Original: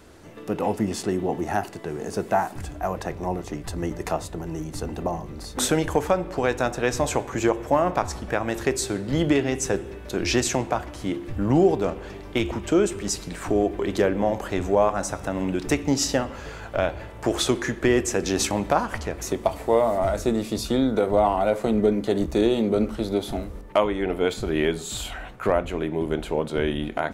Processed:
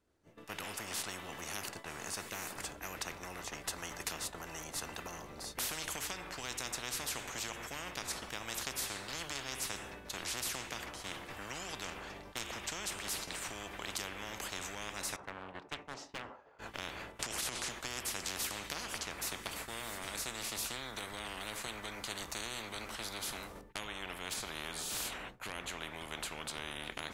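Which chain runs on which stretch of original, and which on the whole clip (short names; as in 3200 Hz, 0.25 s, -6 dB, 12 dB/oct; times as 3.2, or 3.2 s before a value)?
15.16–16.59 band-pass 810 Hz, Q 1.6 + hard clip -21.5 dBFS + Doppler distortion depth 0.46 ms
17.19–17.7 LPF 10000 Hz + transient shaper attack -10 dB, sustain +5 dB + fast leveller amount 70%
whole clip: expander -30 dBFS; spectral compressor 10:1; gain -5.5 dB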